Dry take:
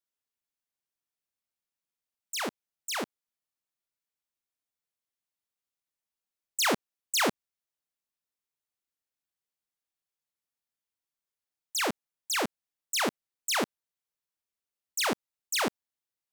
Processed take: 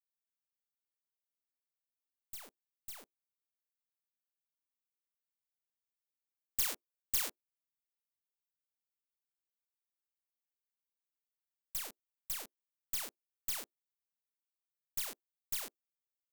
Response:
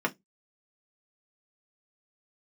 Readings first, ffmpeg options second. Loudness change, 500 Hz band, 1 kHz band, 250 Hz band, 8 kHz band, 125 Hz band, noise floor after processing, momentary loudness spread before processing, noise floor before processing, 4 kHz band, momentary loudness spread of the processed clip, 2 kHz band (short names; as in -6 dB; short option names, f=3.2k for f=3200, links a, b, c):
-8.0 dB, -23.0 dB, -21.0 dB, -26.5 dB, -8.0 dB, -16.0 dB, under -85 dBFS, 10 LU, under -85 dBFS, -13.5 dB, 18 LU, -18.0 dB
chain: -filter_complex "[0:a]aemphasis=mode=production:type=bsi,aeval=exprs='0.631*(cos(1*acos(clip(val(0)/0.631,-1,1)))-cos(1*PI/2))+0.178*(cos(2*acos(clip(val(0)/0.631,-1,1)))-cos(2*PI/2))+0.141*(cos(3*acos(clip(val(0)/0.631,-1,1)))-cos(3*PI/2))+0.0126*(cos(6*acos(clip(val(0)/0.631,-1,1)))-cos(6*PI/2))+0.0141*(cos(7*acos(clip(val(0)/0.631,-1,1)))-cos(7*PI/2))':c=same,asplit=2[a][b];[1:a]atrim=start_sample=2205,asetrate=79380,aresample=44100,lowpass=1.1k[c];[b][c]afir=irnorm=-1:irlink=0,volume=-24dB[d];[a][d]amix=inputs=2:normalize=0,volume=-7.5dB"